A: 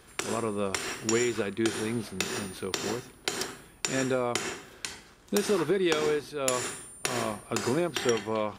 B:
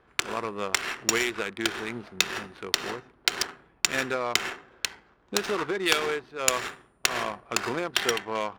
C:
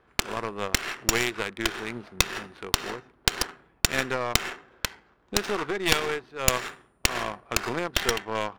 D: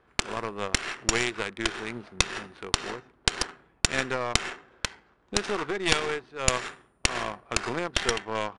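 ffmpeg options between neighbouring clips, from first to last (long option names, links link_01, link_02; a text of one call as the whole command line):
ffmpeg -i in.wav -af "tiltshelf=frequency=740:gain=-9,adynamicsmooth=sensitivity=2.5:basefreq=850,volume=1dB" out.wav
ffmpeg -i in.wav -af "aeval=exprs='0.668*(cos(1*acos(clip(val(0)/0.668,-1,1)))-cos(1*PI/2))+0.237*(cos(4*acos(clip(val(0)/0.668,-1,1)))-cos(4*PI/2))':channel_layout=same,volume=-1dB" out.wav
ffmpeg -i in.wav -af "aresample=22050,aresample=44100,volume=-1dB" out.wav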